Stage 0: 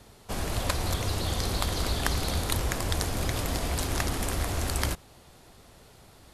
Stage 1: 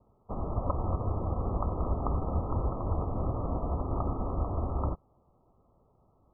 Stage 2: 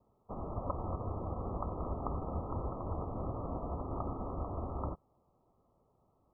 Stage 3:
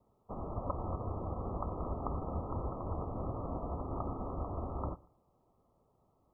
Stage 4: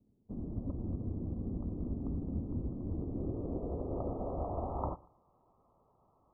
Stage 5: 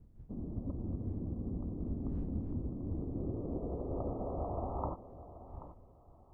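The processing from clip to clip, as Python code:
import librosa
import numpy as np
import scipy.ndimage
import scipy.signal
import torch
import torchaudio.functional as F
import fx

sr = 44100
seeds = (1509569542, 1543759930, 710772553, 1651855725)

y1 = scipy.signal.sosfilt(scipy.signal.cheby1(10, 1.0, 1300.0, 'lowpass', fs=sr, output='sos'), x)
y1 = fx.upward_expand(y1, sr, threshold_db=-50.0, expansion=1.5)
y1 = y1 * 10.0 ** (1.5 / 20.0)
y2 = fx.low_shelf(y1, sr, hz=100.0, db=-6.5)
y2 = y2 * 10.0 ** (-4.5 / 20.0)
y3 = fx.echo_feedback(y2, sr, ms=118, feedback_pct=25, wet_db=-22.5)
y4 = fx.filter_sweep_lowpass(y3, sr, from_hz=260.0, to_hz=1100.0, start_s=2.78, end_s=5.24, q=2.1)
y5 = fx.dmg_wind(y4, sr, seeds[0], corner_hz=82.0, level_db=-51.0)
y5 = fx.echo_feedback(y5, sr, ms=782, feedback_pct=26, wet_db=-14.0)
y5 = y5 * 10.0 ** (-1.0 / 20.0)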